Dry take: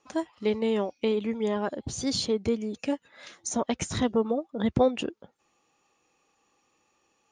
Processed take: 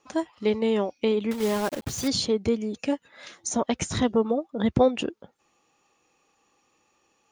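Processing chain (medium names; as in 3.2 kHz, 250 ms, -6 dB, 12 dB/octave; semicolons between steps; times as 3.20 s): 1.31–2.09 s: block-companded coder 3-bit; trim +2.5 dB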